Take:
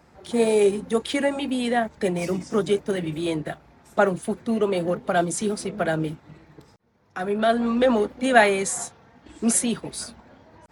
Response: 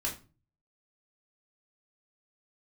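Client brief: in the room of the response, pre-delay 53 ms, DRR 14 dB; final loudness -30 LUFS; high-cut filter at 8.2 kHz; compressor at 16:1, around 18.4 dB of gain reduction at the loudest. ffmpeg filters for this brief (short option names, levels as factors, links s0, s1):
-filter_complex "[0:a]lowpass=8200,acompressor=threshold=0.0398:ratio=16,asplit=2[s0][s1];[1:a]atrim=start_sample=2205,adelay=53[s2];[s1][s2]afir=irnorm=-1:irlink=0,volume=0.126[s3];[s0][s3]amix=inputs=2:normalize=0,volume=1.5"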